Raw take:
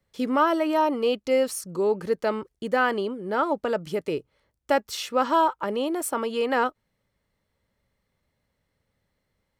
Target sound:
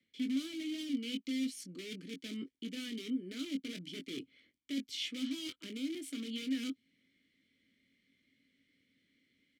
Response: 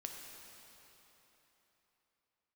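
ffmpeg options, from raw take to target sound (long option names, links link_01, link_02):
-filter_complex "[0:a]asplit=2[link_01][link_02];[link_02]aeval=exprs='(mod(13.3*val(0)+1,2)-1)/13.3':channel_layout=same,volume=-4dB[link_03];[link_01][link_03]amix=inputs=2:normalize=0,acrossover=split=350|3000[link_04][link_05][link_06];[link_05]acompressor=threshold=-35dB:ratio=6[link_07];[link_04][link_07][link_06]amix=inputs=3:normalize=0,asplit=2[link_08][link_09];[link_09]adelay=22,volume=-8dB[link_10];[link_08][link_10]amix=inputs=2:normalize=0,areverse,acompressor=threshold=-37dB:ratio=6,areverse,asplit=3[link_11][link_12][link_13];[link_11]bandpass=frequency=270:width_type=q:width=8,volume=0dB[link_14];[link_12]bandpass=frequency=2290:width_type=q:width=8,volume=-6dB[link_15];[link_13]bandpass=frequency=3010:width_type=q:width=8,volume=-9dB[link_16];[link_14][link_15][link_16]amix=inputs=3:normalize=0,highshelf=frequency=2900:gain=12,volume=8.5dB"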